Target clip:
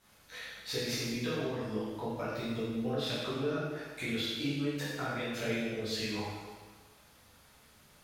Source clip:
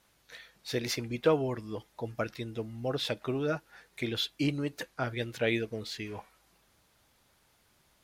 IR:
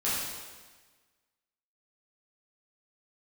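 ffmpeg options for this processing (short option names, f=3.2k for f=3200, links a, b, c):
-filter_complex "[0:a]acompressor=threshold=-38dB:ratio=6[a];[1:a]atrim=start_sample=2205[b];[a][b]afir=irnorm=-1:irlink=0,volume=-2dB"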